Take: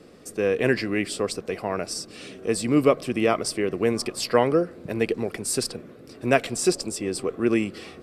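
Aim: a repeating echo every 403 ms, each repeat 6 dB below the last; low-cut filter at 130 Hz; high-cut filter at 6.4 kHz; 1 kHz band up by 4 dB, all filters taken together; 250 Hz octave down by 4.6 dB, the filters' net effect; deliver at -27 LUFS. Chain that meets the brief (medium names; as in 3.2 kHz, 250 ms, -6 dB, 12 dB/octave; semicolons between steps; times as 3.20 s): high-pass 130 Hz; low-pass 6.4 kHz; peaking EQ 250 Hz -6.5 dB; peaking EQ 1 kHz +6 dB; feedback delay 403 ms, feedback 50%, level -6 dB; trim -2.5 dB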